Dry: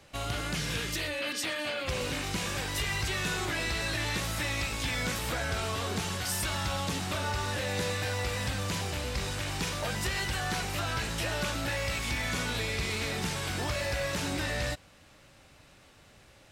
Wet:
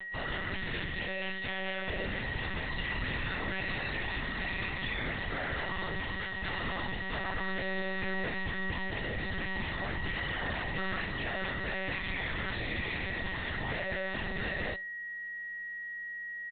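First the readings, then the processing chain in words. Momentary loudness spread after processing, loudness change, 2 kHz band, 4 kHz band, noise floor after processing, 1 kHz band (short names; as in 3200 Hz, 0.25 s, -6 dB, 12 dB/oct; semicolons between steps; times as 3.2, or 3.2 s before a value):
2 LU, -3.0 dB, +1.0 dB, -6.5 dB, -41 dBFS, -3.5 dB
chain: in parallel at +1 dB: compressor 6:1, threshold -46 dBFS, peak gain reduction 16.5 dB; on the sum: resonator 99 Hz, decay 0.61 s, harmonics all, mix 50%; soft clip -30 dBFS, distortion -18 dB; whine 1900 Hz -41 dBFS; on a send: feedback echo 60 ms, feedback 45%, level -18.5 dB; on the sum: monotone LPC vocoder at 8 kHz 190 Hz; gain +1.5 dB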